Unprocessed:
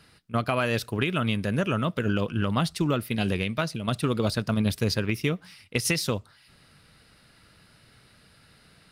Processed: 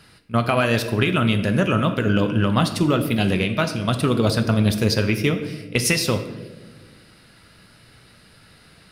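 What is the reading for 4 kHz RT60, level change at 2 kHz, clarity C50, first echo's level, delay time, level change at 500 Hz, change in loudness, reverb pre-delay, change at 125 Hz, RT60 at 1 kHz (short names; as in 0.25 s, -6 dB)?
0.70 s, +6.0 dB, 10.0 dB, none, none, +6.5 dB, +6.5 dB, 5 ms, +6.5 dB, 1.1 s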